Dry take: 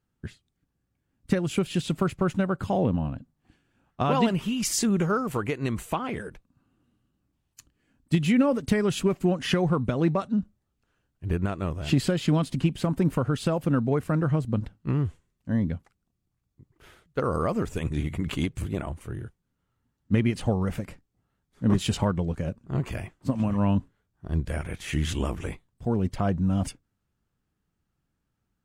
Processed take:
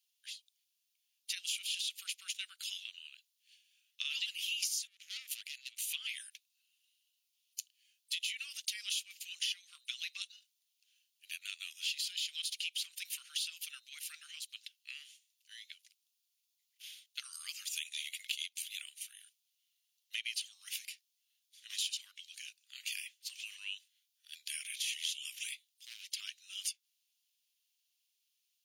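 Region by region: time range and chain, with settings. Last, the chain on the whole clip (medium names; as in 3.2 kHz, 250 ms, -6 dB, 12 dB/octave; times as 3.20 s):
4.87–5.87 s: valve stage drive 31 dB, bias 0.4 + compression 3:1, threshold -37 dBFS
25.48–26.18 s: high-pass 120 Hz + hard clipper -24.5 dBFS
whole clip: steep high-pass 2.8 kHz 36 dB/octave; band-stop 7.9 kHz, Q 5.1; compression 10:1, threshold -45 dBFS; trim +11 dB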